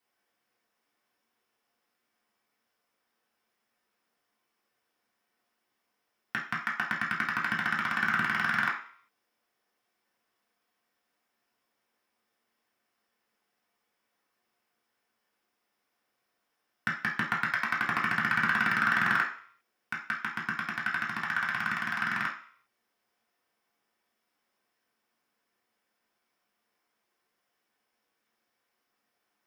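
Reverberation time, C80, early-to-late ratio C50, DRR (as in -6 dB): 0.50 s, 11.5 dB, 6.5 dB, -5.5 dB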